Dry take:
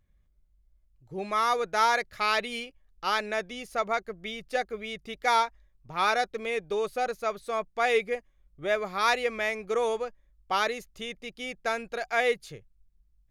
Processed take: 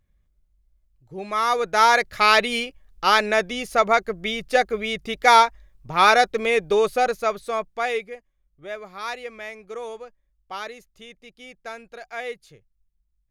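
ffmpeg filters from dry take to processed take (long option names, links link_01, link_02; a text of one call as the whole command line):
ffmpeg -i in.wav -af "volume=10dB,afade=type=in:start_time=1.23:duration=1.03:silence=0.354813,afade=type=out:start_time=6.77:duration=0.96:silence=0.421697,afade=type=out:start_time=7.73:duration=0.4:silence=0.354813" out.wav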